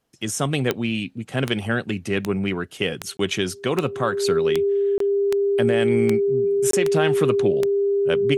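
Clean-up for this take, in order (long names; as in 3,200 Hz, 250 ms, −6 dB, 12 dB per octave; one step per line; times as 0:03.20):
click removal
notch filter 400 Hz, Q 30
repair the gap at 0:03.17/0:04.98/0:06.71, 23 ms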